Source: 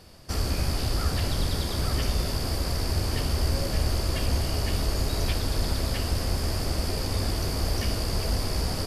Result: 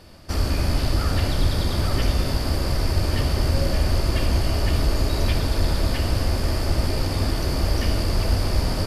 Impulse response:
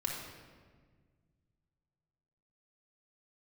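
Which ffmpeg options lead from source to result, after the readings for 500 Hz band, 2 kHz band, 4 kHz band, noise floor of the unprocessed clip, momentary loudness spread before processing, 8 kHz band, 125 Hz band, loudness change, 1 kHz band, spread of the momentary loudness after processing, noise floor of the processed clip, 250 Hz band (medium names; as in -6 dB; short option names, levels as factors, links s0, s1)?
+4.5 dB, +4.5 dB, +2.0 dB, -31 dBFS, 2 LU, -0.5 dB, +5.0 dB, +4.5 dB, +4.5 dB, 2 LU, -26 dBFS, +5.5 dB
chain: -filter_complex "[0:a]asplit=2[s0][s1];[1:a]atrim=start_sample=2205,lowpass=4900[s2];[s1][s2]afir=irnorm=-1:irlink=0,volume=0.631[s3];[s0][s3]amix=inputs=2:normalize=0"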